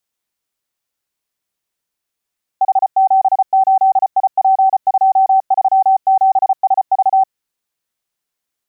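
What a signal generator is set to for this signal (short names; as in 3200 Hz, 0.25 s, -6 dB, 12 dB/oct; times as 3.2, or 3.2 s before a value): Morse "H78IP237SV" 34 wpm 768 Hz -7.5 dBFS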